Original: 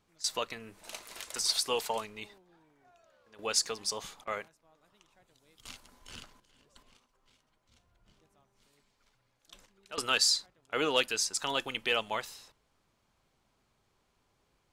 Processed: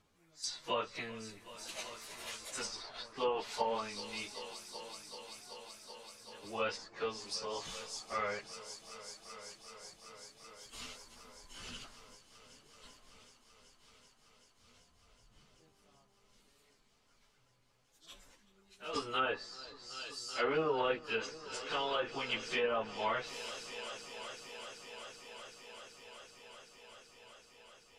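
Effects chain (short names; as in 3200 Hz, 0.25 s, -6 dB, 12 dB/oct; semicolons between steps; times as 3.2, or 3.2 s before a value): plain phase-vocoder stretch 1.9×; multi-head echo 0.382 s, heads all three, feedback 71%, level -20.5 dB; treble ducked by the level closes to 1300 Hz, closed at -28.5 dBFS; gain +1.5 dB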